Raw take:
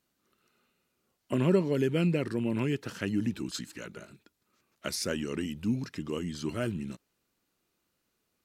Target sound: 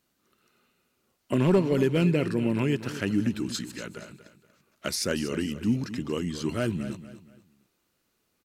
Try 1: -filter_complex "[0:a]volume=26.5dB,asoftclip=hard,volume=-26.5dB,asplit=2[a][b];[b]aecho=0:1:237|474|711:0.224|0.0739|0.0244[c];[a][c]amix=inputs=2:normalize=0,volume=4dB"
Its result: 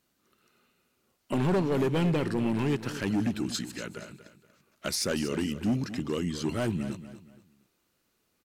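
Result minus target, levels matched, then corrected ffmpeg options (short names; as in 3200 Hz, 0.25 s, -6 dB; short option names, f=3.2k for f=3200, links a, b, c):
overloaded stage: distortion +12 dB
-filter_complex "[0:a]volume=18.5dB,asoftclip=hard,volume=-18.5dB,asplit=2[a][b];[b]aecho=0:1:237|474|711:0.224|0.0739|0.0244[c];[a][c]amix=inputs=2:normalize=0,volume=4dB"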